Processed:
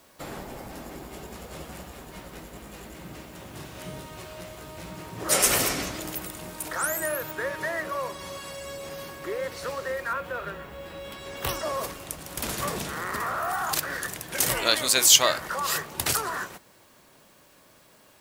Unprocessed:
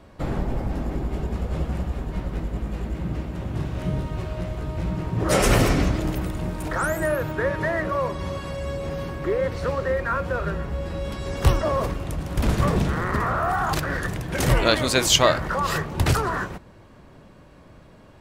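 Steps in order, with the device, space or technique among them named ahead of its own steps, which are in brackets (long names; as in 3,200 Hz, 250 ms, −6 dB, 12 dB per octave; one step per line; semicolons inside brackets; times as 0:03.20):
turntable without a phono preamp (RIAA equalisation recording; white noise bed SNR 32 dB)
0:10.13–0:11.49: flat-topped bell 7,400 Hz −9 dB
level −5 dB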